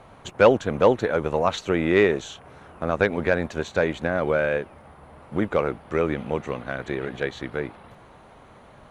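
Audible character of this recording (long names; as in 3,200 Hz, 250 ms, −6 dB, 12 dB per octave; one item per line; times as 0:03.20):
background noise floor −50 dBFS
spectral slope −5.0 dB per octave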